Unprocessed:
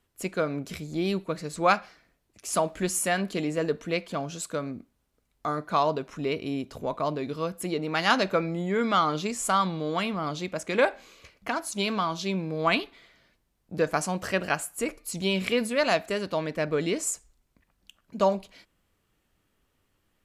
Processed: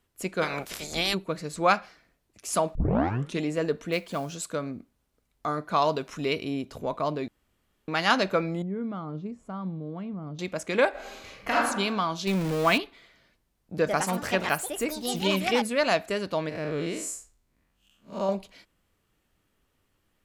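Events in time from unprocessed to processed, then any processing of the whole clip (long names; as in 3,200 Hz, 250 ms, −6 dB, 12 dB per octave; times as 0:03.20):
0:00.41–0:01.13: ceiling on every frequency bin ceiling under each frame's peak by 28 dB
0:02.75: tape start 0.66 s
0:03.92–0:04.35: log-companded quantiser 6 bits
0:05.82–0:06.45: high-shelf EQ 2,100 Hz +7.5 dB
0:07.28–0:07.88: fill with room tone
0:08.62–0:10.39: resonant band-pass 120 Hz, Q 0.8
0:10.90–0:11.56: thrown reverb, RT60 0.94 s, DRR −7 dB
0:12.27–0:12.78: converter with a step at zero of −28.5 dBFS
0:13.74–0:15.97: delay with pitch and tempo change per echo 109 ms, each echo +4 semitones, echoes 2, each echo −6 dB
0:16.49–0:18.29: spectrum smeared in time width 136 ms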